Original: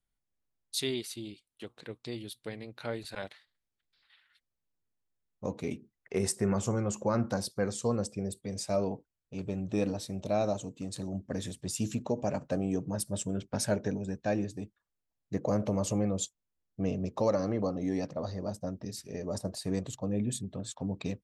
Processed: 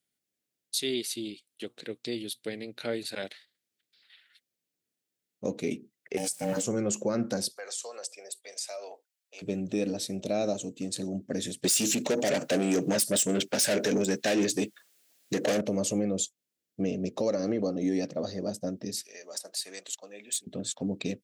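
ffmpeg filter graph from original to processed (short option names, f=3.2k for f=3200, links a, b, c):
-filter_complex "[0:a]asettb=1/sr,asplit=3[a][b][c];[a]atrim=end=6.174[d];[b]atrim=start=6.17:end=6.63,asetpts=PTS-STARTPTS,afade=t=in:d=0.004:c=qsin,afade=t=out:st=0.456:d=0.004:c=qsin,aemphasis=mode=production:type=50kf,aeval=exprs='val(0)*sin(2*PI*380*n/s)':c=same,aeval=exprs='val(0)*gte(abs(val(0)),0.00398)':c=same[e];[c]atrim=start=6.626[f];[d][e]acrossfade=d=0.004:c1=hsin:c2=qsin[g];[g][f]acrossfade=d=0.004:c1=qsin:c2=hsin,asettb=1/sr,asplit=3[h][i][j];[h]atrim=end=7.564[k];[i]atrim=start=7.56:end=9.42,asetpts=PTS-STARTPTS,afade=t=in:d=0.004:c=qsin,afade=t=out:st=1.856:d=0.004:c=qsin,highpass=f=660:w=0.5412,highpass=f=660:w=1.3066,acompressor=threshold=-40dB:ratio=3:attack=3.2:release=140:knee=1:detection=peak[l];[j]atrim=start=9.416[m];[k][l]acrossfade=d=0.004:c1=hsin:c2=qsin[n];[n][m]acrossfade=d=0.004:c1=qsin:c2=hsin,asettb=1/sr,asplit=3[o][p][q];[o]atrim=end=11.644[r];[p]atrim=start=11.64:end=15.61,asetpts=PTS-STARTPTS,afade=t=in:d=0.004:c=qsin,afade=t=out:st=3.966:d=0.004:c=qsin,asplit=2[s][t];[t]highpass=f=720:p=1,volume=26dB,asoftclip=type=tanh:threshold=-16.5dB[u];[s][u]amix=inputs=2:normalize=0,lowpass=f=7.5k:p=1,volume=-6dB,highshelf=f=8.4k:g=8[v];[q]atrim=start=15.606[w];[r][v]acrossfade=d=0.004:c1=hsin:c2=qsin[x];[x][w]acrossfade=d=0.004:c1=qsin:c2=hsin,asettb=1/sr,asplit=3[y][z][aa];[y]atrim=end=19.034[ab];[z]atrim=start=19.03:end=20.47,asetpts=PTS-STARTPTS,afade=t=in:d=0.004:c=qsin,afade=t=out:st=1.436:d=0.004:c=qsin,highpass=1.1k,asoftclip=type=hard:threshold=-32dB[ac];[aa]atrim=start=20.466[ad];[ab][ac]acrossfade=d=0.004:c1=hsin:c2=qsin[ae];[ae][ad]acrossfade=d=0.004:c1=qsin:c2=hsin,highpass=240,equalizer=f=1k:t=o:w=1.1:g=-14,alimiter=level_in=3dB:limit=-24dB:level=0:latency=1:release=188,volume=-3dB,volume=8.5dB"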